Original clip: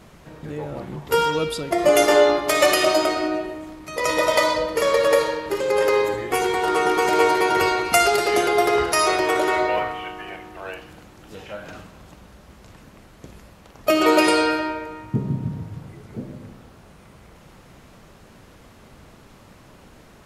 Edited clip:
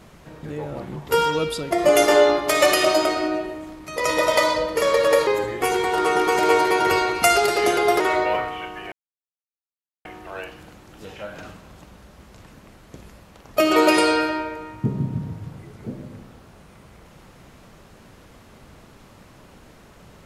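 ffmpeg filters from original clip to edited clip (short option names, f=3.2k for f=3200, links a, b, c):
-filter_complex "[0:a]asplit=4[a][b][c][d];[a]atrim=end=5.272[e];[b]atrim=start=5.968:end=8.702[f];[c]atrim=start=9.428:end=10.35,asetpts=PTS-STARTPTS,afade=t=out:st=0.918:d=0.004:c=hsin,apad=pad_dur=1.13[g];[d]atrim=start=10.35,asetpts=PTS-STARTPTS,afade=t=in:d=0.004:c=hsin[h];[e][f]acrossfade=d=0.004:c1=hsin:c2=hsin[i];[g][h]concat=n=2:v=0:a=1[j];[i][j]acrossfade=d=0.004:c1=hsin:c2=hsin"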